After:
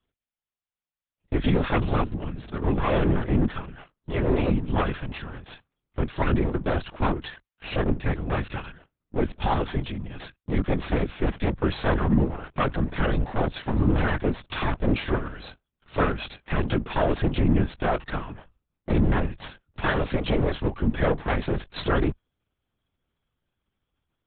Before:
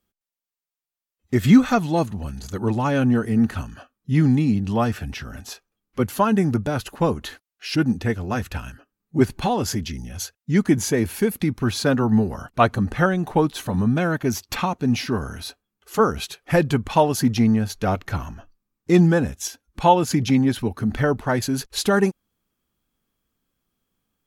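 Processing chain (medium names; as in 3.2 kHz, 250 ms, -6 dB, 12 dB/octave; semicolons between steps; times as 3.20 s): comb filter that takes the minimum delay 5.1 ms; peak limiter -14 dBFS, peak gain reduction 9.5 dB; LPC vocoder at 8 kHz whisper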